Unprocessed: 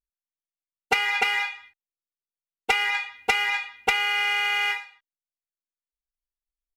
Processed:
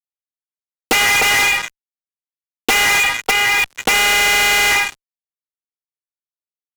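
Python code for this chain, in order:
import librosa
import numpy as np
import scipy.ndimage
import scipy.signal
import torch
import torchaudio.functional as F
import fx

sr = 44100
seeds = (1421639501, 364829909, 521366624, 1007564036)

y = fx.level_steps(x, sr, step_db=19, at=(3.2, 3.77), fade=0.02)
y = fx.fuzz(y, sr, gain_db=42.0, gate_db=-49.0)
y = fx.band_squash(y, sr, depth_pct=70)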